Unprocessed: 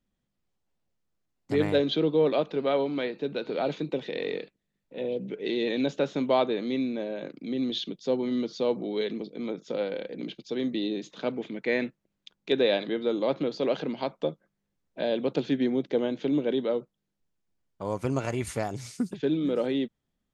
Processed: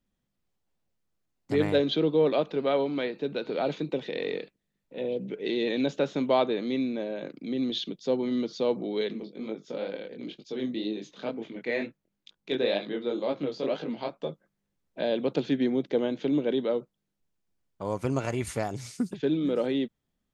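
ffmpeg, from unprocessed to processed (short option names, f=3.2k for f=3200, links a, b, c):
-filter_complex "[0:a]asplit=3[a][b][c];[a]afade=t=out:st=9.11:d=0.02[d];[b]flanger=delay=18:depth=6.8:speed=2.1,afade=t=in:st=9.11:d=0.02,afade=t=out:st=14.29:d=0.02[e];[c]afade=t=in:st=14.29:d=0.02[f];[d][e][f]amix=inputs=3:normalize=0"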